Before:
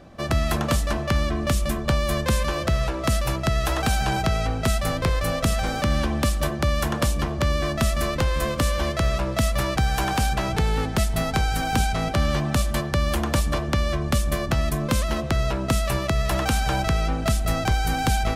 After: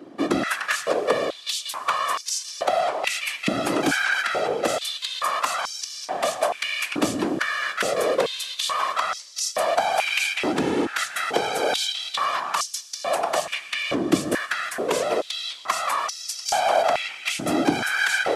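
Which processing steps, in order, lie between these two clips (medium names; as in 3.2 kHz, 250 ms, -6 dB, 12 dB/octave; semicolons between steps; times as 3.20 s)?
formant shift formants -3 st; whisper effect; Schroeder reverb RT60 3.7 s, combs from 27 ms, DRR 15.5 dB; step-sequenced high-pass 2.3 Hz 300–5500 Hz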